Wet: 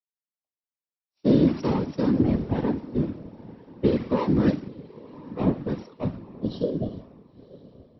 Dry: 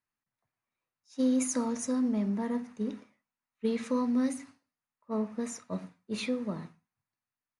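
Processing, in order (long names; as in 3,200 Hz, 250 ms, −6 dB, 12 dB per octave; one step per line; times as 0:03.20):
running median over 25 samples
brick-wall band-pass 170–6,000 Hz
mains-hum notches 50/100/150/200/250 Hz
healed spectral selection 0:06.00–0:06.84, 730–3,000 Hz
on a send: feedback delay with all-pass diffusion 949 ms, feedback 41%, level −15 dB
on the sum: random phases in short frames
speed change −5%
in parallel at 0 dB: downward compressor, threshold −41 dBFS, peak gain reduction 16.5 dB
on the sum: multiband upward and downward expander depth 70%
level +6 dB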